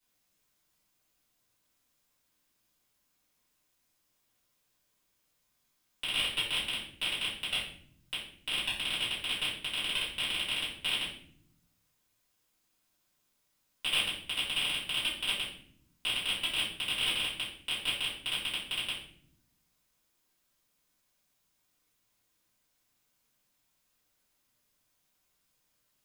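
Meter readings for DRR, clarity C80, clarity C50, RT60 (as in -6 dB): -10.0 dB, 7.5 dB, 4.0 dB, not exponential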